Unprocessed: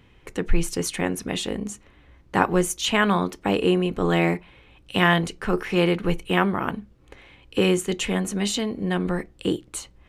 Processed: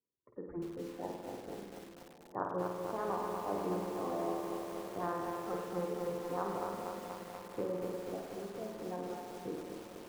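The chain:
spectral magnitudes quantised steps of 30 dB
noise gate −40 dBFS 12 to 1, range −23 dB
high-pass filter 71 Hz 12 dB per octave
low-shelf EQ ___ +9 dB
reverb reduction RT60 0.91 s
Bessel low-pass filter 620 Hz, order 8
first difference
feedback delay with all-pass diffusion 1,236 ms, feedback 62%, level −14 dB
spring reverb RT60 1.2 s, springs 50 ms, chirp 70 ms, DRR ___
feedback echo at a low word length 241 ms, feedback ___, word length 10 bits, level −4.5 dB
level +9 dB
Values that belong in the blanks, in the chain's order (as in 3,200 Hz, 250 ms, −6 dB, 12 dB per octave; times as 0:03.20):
100 Hz, 1.5 dB, 80%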